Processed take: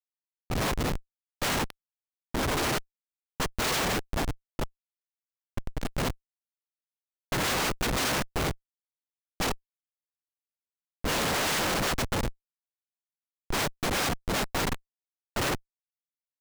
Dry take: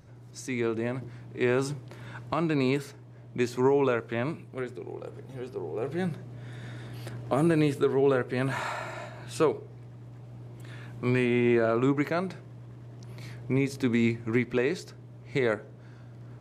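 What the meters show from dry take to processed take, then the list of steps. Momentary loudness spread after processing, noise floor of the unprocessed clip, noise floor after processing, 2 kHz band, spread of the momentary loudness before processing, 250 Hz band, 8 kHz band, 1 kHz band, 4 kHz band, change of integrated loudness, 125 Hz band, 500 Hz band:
12 LU, -48 dBFS, under -85 dBFS, +2.5 dB, 21 LU, -7.0 dB, +13.5 dB, +3.5 dB, +11.5 dB, -1.5 dB, -4.0 dB, -7.5 dB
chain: inharmonic rescaling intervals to 111%; LPF 2400 Hz 12 dB/oct; noise vocoder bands 1; Schmitt trigger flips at -25 dBFS; mismatched tape noise reduction decoder only; gain +4 dB

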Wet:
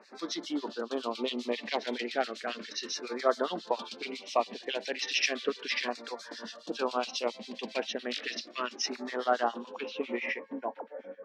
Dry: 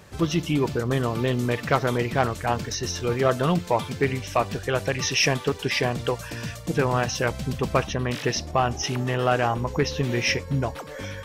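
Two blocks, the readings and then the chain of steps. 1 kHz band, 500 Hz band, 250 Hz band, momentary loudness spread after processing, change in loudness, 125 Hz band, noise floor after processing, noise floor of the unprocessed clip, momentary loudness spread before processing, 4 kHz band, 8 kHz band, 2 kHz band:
-8.0 dB, -8.0 dB, -11.0 dB, 10 LU, -9.0 dB, under -35 dB, -51 dBFS, -38 dBFS, 6 LU, -5.0 dB, -10.5 dB, -7.5 dB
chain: LFO notch saw down 0.34 Hz 690–3300 Hz; low shelf 500 Hz -6 dB; harmonic tremolo 7.3 Hz, depth 100%, crossover 1800 Hz; elliptic high-pass 220 Hz, stop band 40 dB; low-pass sweep 4300 Hz -> 700 Hz, 9.45–11.2

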